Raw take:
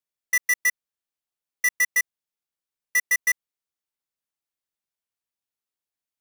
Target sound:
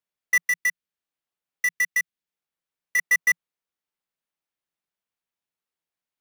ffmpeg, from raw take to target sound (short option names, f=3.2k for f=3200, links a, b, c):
-filter_complex "[0:a]bass=f=250:g=-4,treble=f=4k:g=-7,asettb=1/sr,asplit=3[a][b][c];[a]atrim=end=0.454[d];[b]atrim=start=0.45:end=2.99,asetpts=PTS-STARTPTS,afade=t=in:d=0.004:c=qsin,afade=t=out:st=2.536:d=0.004:c=qsin,acrossover=split=530|1300[e][f][g];[e]acompressor=threshold=-58dB:ratio=4[h];[f]acompressor=threshold=-58dB:ratio=4[i];[g]acompressor=threshold=-23dB:ratio=4[j];[h][i][j]amix=inputs=3:normalize=0[k];[c]atrim=start=2.986[l];[d][k]acrossfade=d=0.004:c1=hsin:c2=qsin[m];[m][l]acrossfade=d=0.004:c1=qsin:c2=hsin,equalizer=f=170:w=3.7:g=7,volume=3dB"